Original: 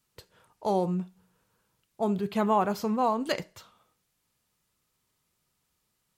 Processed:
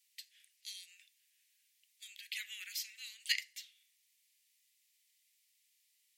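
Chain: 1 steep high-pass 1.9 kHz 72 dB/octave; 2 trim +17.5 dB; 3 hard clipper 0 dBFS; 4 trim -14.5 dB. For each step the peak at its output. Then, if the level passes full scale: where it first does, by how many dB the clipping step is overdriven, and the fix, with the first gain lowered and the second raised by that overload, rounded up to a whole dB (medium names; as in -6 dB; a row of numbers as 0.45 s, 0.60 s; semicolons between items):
-20.0 dBFS, -2.5 dBFS, -2.5 dBFS, -17.0 dBFS; nothing clips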